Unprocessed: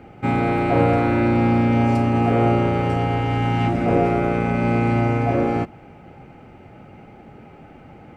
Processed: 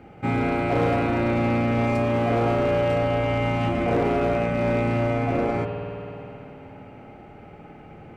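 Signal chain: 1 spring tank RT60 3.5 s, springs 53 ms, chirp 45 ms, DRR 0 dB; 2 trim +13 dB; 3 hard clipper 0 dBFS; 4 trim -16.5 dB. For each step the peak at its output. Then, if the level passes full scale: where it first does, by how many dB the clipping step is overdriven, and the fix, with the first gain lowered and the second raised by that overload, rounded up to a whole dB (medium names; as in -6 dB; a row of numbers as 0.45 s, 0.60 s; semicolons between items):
-4.5 dBFS, +8.5 dBFS, 0.0 dBFS, -16.5 dBFS; step 2, 8.5 dB; step 2 +4 dB, step 4 -7.5 dB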